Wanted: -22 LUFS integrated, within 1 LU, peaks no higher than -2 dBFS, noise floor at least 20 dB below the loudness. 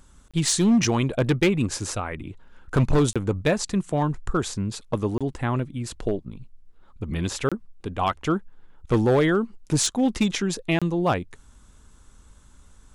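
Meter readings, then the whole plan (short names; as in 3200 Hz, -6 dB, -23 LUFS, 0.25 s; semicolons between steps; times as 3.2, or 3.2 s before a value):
clipped 1.2%; flat tops at -14.0 dBFS; dropouts 5; longest dropout 26 ms; loudness -24.5 LUFS; peak -14.0 dBFS; loudness target -22.0 LUFS
-> clip repair -14 dBFS; interpolate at 0.31/3.13/5.18/7.49/10.79, 26 ms; gain +2.5 dB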